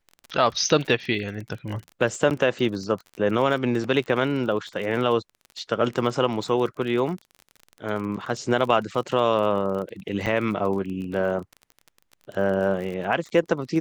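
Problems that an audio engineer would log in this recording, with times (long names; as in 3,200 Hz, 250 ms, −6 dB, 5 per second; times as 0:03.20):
surface crackle 29 per second −31 dBFS
0:02.30–0:02.31: drop-out 8.8 ms
0:10.26–0:10.27: drop-out 7.1 ms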